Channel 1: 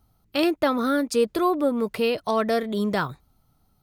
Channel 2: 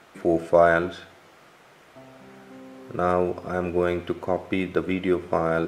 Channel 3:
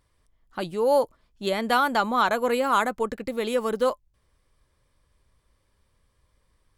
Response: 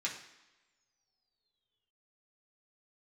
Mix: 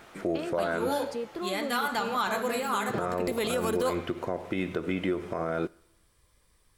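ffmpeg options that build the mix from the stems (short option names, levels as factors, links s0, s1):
-filter_complex "[0:a]lowpass=f=2600:p=1,acompressor=threshold=0.0224:ratio=2,volume=0.562,asplit=2[s0][s1];[1:a]acompressor=threshold=0.0708:ratio=6,volume=1.06,asplit=2[s2][s3];[s3]volume=0.0841[s4];[2:a]highshelf=f=5500:g=9,volume=1,asplit=2[s5][s6];[s6]volume=0.316[s7];[s1]apad=whole_len=298926[s8];[s5][s8]sidechaincompress=threshold=0.00562:ratio=8:attack=16:release=247[s9];[3:a]atrim=start_sample=2205[s10];[s4][s7]amix=inputs=2:normalize=0[s11];[s11][s10]afir=irnorm=-1:irlink=0[s12];[s0][s2][s9][s12]amix=inputs=4:normalize=0,alimiter=limit=0.119:level=0:latency=1:release=80"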